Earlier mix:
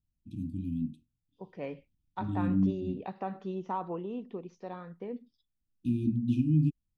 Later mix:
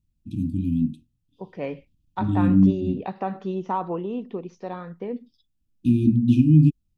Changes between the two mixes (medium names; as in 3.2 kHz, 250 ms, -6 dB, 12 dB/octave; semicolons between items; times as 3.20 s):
first voice +10.5 dB; second voice +8.0 dB